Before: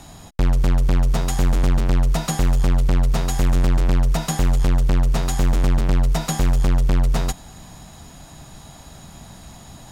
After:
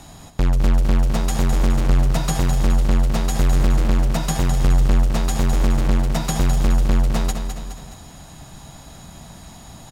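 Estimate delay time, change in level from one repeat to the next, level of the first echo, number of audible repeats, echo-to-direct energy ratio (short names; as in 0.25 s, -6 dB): 0.209 s, -6.0 dB, -7.5 dB, 3, -6.5 dB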